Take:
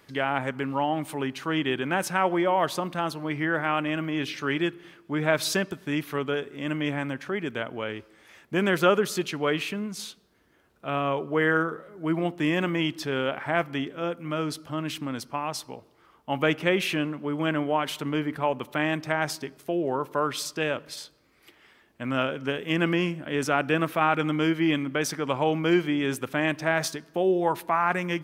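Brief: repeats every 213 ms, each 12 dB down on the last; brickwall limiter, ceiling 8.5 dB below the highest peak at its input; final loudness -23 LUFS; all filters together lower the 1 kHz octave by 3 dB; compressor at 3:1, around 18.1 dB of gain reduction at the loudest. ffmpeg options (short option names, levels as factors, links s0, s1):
-af "equalizer=f=1000:t=o:g=-4,acompressor=threshold=0.00631:ratio=3,alimiter=level_in=2.99:limit=0.0631:level=0:latency=1,volume=0.335,aecho=1:1:213|426|639:0.251|0.0628|0.0157,volume=11.9"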